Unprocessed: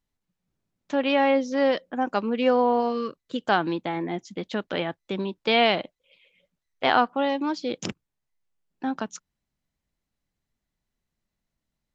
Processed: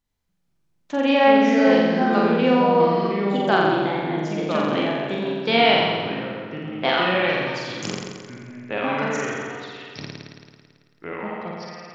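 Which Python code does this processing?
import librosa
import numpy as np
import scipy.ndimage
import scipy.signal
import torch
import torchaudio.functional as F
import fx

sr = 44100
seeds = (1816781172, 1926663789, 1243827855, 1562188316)

p1 = fx.highpass(x, sr, hz=1400.0, slope=12, at=(6.89, 7.83))
p2 = p1 + fx.room_flutter(p1, sr, wall_m=7.5, rt60_s=1.4, dry=0)
y = fx.echo_pitch(p2, sr, ms=95, semitones=-4, count=2, db_per_echo=-6.0)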